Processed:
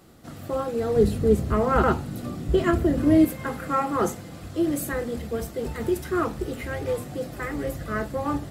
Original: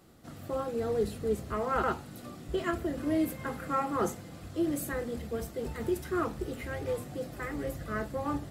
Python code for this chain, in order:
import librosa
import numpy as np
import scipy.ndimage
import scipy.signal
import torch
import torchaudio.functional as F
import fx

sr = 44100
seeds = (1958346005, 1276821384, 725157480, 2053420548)

y = fx.low_shelf(x, sr, hz=370.0, db=9.5, at=(0.96, 3.25))
y = F.gain(torch.from_numpy(y), 6.0).numpy()